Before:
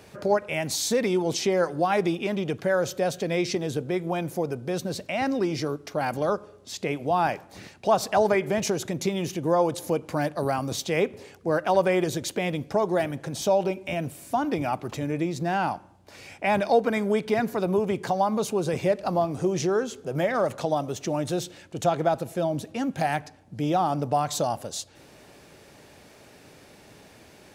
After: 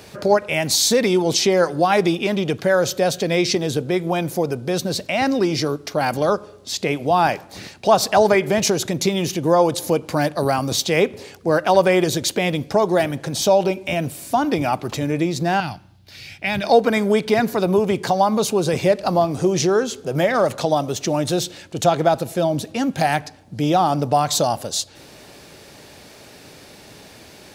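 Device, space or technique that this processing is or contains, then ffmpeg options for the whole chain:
presence and air boost: -filter_complex "[0:a]equalizer=f=4.3k:t=o:w=0.96:g=5,highshelf=f=10k:g=5,asettb=1/sr,asplit=3[a][b][c];[a]atrim=end=15.604[d];[b]atrim=start=15.6:end=16.64,asetpts=PTS-STARTPTS,afade=t=in:d=0.004:c=qsin,afade=t=out:st=1.036:d=0.004:c=qsin,equalizer=f=125:t=o:w=1:g=5,equalizer=f=250:t=o:w=1:g=-6,equalizer=f=500:t=o:w=1:g=-10,equalizer=f=1k:t=o:w=1:g=-11,equalizer=f=4k:t=o:w=1:g=3,equalizer=f=8k:t=o:w=1:g=-9[e];[c]atrim=start=16.636[f];[d][e]acrossfade=d=0.004:c1=hsin:c2=qsin[g];[g][f]acrossfade=d=0.004:c1=qsin:c2=hsin,volume=6.5dB"

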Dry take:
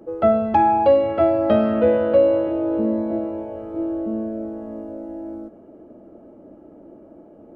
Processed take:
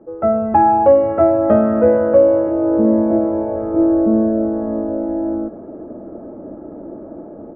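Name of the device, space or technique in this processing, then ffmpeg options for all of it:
action camera in a waterproof case: -af "lowpass=f=1.7k:w=0.5412,lowpass=f=1.7k:w=1.3066,dynaudnorm=f=250:g=3:m=13dB,volume=-1dB" -ar 24000 -c:a aac -b:a 96k

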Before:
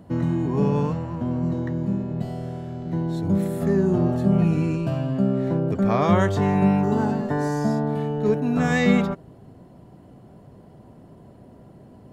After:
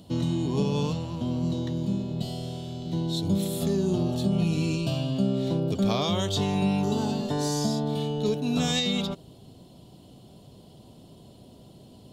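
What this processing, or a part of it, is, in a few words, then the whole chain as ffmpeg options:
over-bright horn tweeter: -af "highshelf=f=2.5k:t=q:w=3:g=11.5,alimiter=limit=-13dB:level=0:latency=1:release=283,volume=-3dB"

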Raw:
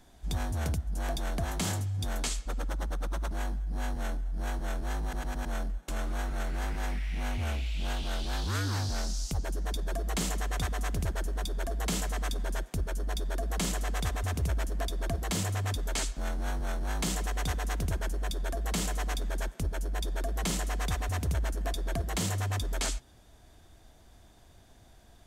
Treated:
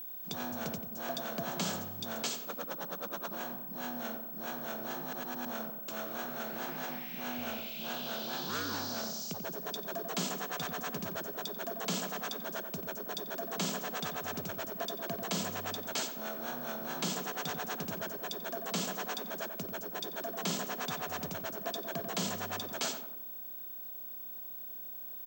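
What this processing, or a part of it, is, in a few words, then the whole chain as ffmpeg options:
old television with a line whistle: -filter_complex "[0:a]highpass=f=180:w=0.5412,highpass=f=180:w=1.3066,equalizer=f=300:t=q:w=4:g=-6,equalizer=f=800:t=q:w=4:g=-3,equalizer=f=2k:t=q:w=4:g=-7,lowpass=f=7k:w=0.5412,lowpass=f=7k:w=1.3066,asplit=2[a][b];[b]adelay=90,lowpass=f=1.5k:p=1,volume=-6dB,asplit=2[c][d];[d]adelay=90,lowpass=f=1.5k:p=1,volume=0.54,asplit=2[e][f];[f]adelay=90,lowpass=f=1.5k:p=1,volume=0.54,asplit=2[g][h];[h]adelay=90,lowpass=f=1.5k:p=1,volume=0.54,asplit=2[i][j];[j]adelay=90,lowpass=f=1.5k:p=1,volume=0.54,asplit=2[k][l];[l]adelay=90,lowpass=f=1.5k:p=1,volume=0.54,asplit=2[m][n];[n]adelay=90,lowpass=f=1.5k:p=1,volume=0.54[o];[a][c][e][g][i][k][m][o]amix=inputs=8:normalize=0,aeval=exprs='val(0)+0.00891*sin(2*PI*15734*n/s)':c=same"

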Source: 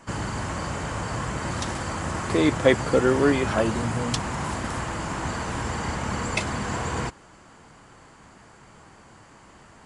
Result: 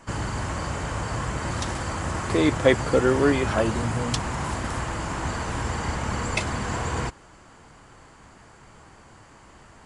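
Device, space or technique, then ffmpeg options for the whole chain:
low shelf boost with a cut just above: -af "lowshelf=f=72:g=6.5,equalizer=f=190:t=o:w=0.77:g=-2.5"

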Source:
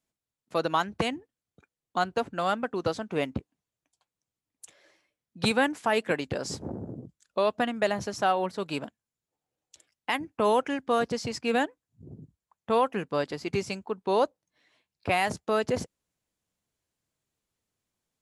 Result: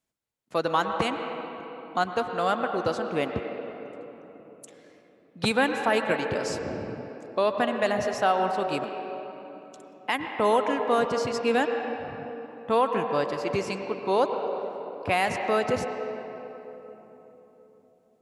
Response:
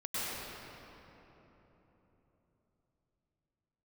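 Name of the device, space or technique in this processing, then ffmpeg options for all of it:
filtered reverb send: -filter_complex "[0:a]asplit=2[a][b];[b]highpass=300,lowpass=3.4k[c];[1:a]atrim=start_sample=2205[d];[c][d]afir=irnorm=-1:irlink=0,volume=-9dB[e];[a][e]amix=inputs=2:normalize=0"

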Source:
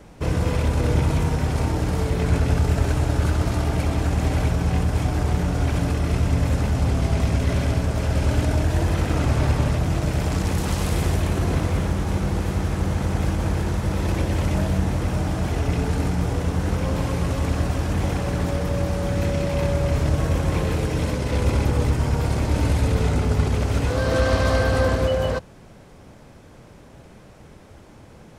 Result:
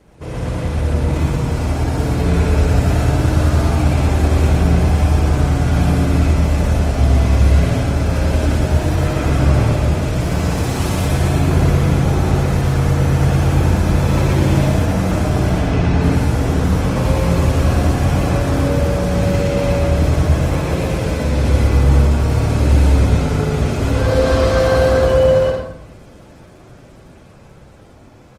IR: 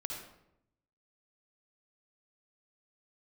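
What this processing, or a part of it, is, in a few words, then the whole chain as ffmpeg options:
speakerphone in a meeting room: -filter_complex "[0:a]asettb=1/sr,asplit=3[a][b][c];[a]atrim=end=15.514[d];[b]atrim=start=15.51:end=16.03,asetpts=PTS-STARTPTS,afade=t=in:d=0.004:c=qsin,afade=t=out:st=0.516:d=0.004:c=qsin,lowpass=5.1k[e];[c]atrim=start=16.026[f];[d][e]acrossfade=d=0.004:c1=hsin:c2=qsin[g];[g][f]acrossfade=d=0.004:c1=qsin:c2=hsin,lowshelf=f=61:g=-3,aecho=1:1:116.6|172:0.891|0.355[h];[1:a]atrim=start_sample=2205[i];[h][i]afir=irnorm=-1:irlink=0,dynaudnorm=f=290:g=13:m=11.5dB,volume=-1dB" -ar 48000 -c:a libopus -b:a 20k

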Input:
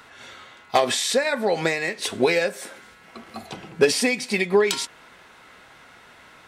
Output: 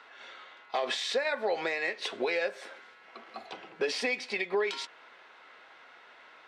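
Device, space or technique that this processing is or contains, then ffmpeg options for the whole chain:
DJ mixer with the lows and highs turned down: -filter_complex "[0:a]acrossover=split=330 5000:gain=0.0794 1 0.0708[a][b][c];[a][b][c]amix=inputs=3:normalize=0,alimiter=limit=-15.5dB:level=0:latency=1:release=113,volume=-4.5dB"

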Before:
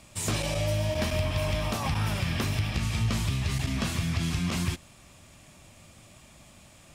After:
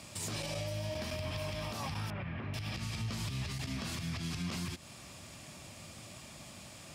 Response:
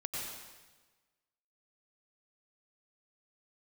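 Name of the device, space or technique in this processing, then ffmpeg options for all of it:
broadcast voice chain: -filter_complex "[0:a]highpass=80,deesser=0.6,acompressor=threshold=-35dB:ratio=4,equalizer=f=4.8k:t=o:w=0.44:g=5,alimiter=level_in=8dB:limit=-24dB:level=0:latency=1:release=124,volume=-8dB,asettb=1/sr,asplit=3[a][b][c];[a]atrim=end=2.104[d];[b]atrim=start=2.1:end=2.54,asetpts=PTS-STARTPTS,afade=t=in:d=0.004:c=qsin,afade=t=out:st=0.436:d=0.004:c=qsin,lowpass=f=2.3k:w=0.5412,lowpass=f=2.3k:w=1.3066[e];[c]atrim=start=2.536[f];[d][e]acrossfade=d=0.004:c1=hsin:c2=qsin[g];[g][f]acrossfade=d=0.004:c1=qsin:c2=hsin,volume=3dB"

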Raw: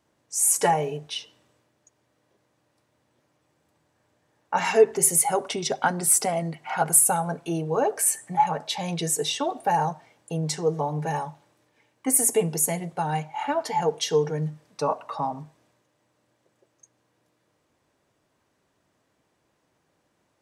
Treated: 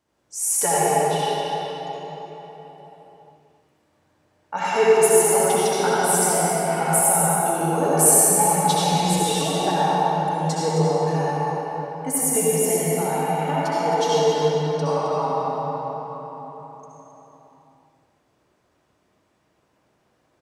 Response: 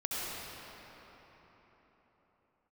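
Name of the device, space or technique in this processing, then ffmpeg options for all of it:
cave: -filter_complex "[0:a]asettb=1/sr,asplit=3[a][b][c];[a]atrim=end=7.764[d];[b]atrim=start=7.76:end=8.93,asetpts=PTS-STARTPTS,afade=t=in:d=0.004:c=qsin,afade=t=out:st=1.166:d=0.004:c=qsin,bass=f=250:g=9,treble=f=4k:g=10[e];[c]atrim=start=8.926[f];[d][e]acrossfade=d=0.004:c1=hsin:c2=qsin[g];[g][f]acrossfade=d=0.004:c1=qsin:c2=hsin,aecho=1:1:265:0.335[h];[1:a]atrim=start_sample=2205[i];[h][i]afir=irnorm=-1:irlink=0,volume=-1.5dB"

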